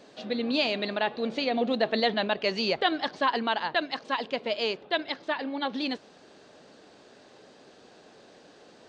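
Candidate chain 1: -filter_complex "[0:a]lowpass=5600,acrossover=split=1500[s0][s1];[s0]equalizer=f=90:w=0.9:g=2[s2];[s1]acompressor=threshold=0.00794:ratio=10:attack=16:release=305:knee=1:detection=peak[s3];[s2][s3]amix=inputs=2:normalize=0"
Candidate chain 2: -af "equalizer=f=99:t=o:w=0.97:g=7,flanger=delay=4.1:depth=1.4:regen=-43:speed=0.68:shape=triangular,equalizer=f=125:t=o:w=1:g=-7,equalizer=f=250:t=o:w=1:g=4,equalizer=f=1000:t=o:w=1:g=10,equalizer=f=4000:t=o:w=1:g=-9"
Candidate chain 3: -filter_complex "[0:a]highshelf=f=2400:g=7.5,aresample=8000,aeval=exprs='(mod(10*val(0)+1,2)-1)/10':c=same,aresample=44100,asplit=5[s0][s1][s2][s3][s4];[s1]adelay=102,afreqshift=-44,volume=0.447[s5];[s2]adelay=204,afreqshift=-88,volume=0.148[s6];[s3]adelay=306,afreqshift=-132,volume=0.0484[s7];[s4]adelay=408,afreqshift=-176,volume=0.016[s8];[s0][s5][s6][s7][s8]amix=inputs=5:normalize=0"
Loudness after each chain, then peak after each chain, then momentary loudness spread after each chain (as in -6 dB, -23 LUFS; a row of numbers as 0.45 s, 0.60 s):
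-30.5 LUFS, -28.5 LUFS, -27.5 LUFS; -14.5 dBFS, -10.5 dBFS, -13.5 dBFS; 6 LU, 8 LU, 5 LU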